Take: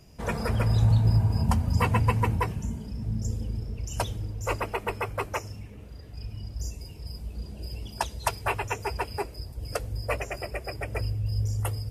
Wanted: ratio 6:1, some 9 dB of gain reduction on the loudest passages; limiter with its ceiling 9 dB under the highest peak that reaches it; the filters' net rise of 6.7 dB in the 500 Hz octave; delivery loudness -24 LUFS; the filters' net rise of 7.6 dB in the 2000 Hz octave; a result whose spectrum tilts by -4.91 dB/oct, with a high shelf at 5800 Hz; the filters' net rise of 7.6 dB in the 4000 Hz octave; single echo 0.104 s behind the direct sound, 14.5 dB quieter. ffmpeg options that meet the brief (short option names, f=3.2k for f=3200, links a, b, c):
-af "equalizer=f=500:t=o:g=7.5,equalizer=f=2k:t=o:g=6.5,equalizer=f=4k:t=o:g=6.5,highshelf=f=5.8k:g=4.5,acompressor=threshold=-26dB:ratio=6,alimiter=limit=-21.5dB:level=0:latency=1,aecho=1:1:104:0.188,volume=9.5dB"